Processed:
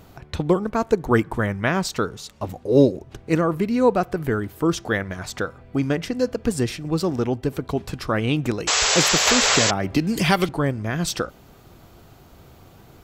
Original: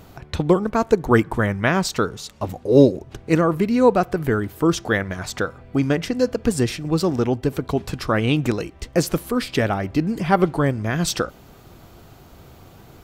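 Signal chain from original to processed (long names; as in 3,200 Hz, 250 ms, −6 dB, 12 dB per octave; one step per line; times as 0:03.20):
0:08.67–0:09.71: sound drawn into the spectrogram noise 400–7,900 Hz −17 dBFS
0:09.27–0:10.49: multiband upward and downward compressor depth 100%
level −2.5 dB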